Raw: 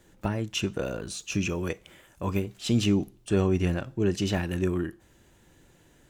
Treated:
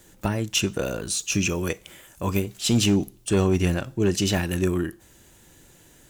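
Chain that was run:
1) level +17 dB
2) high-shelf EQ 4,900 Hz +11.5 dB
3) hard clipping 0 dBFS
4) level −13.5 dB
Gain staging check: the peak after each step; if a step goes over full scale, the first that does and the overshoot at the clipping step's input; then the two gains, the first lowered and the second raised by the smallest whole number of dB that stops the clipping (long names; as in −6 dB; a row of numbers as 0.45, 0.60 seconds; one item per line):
+4.0, +4.5, 0.0, −13.5 dBFS
step 1, 4.5 dB
step 1 +12 dB, step 4 −8.5 dB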